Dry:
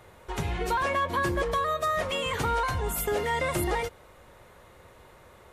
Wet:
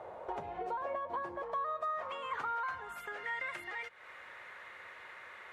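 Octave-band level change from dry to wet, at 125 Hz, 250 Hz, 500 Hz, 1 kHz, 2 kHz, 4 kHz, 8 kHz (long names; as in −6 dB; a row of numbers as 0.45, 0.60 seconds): −27.5 dB, −18.5 dB, −12.5 dB, −8.5 dB, −8.5 dB, −17.0 dB, below −25 dB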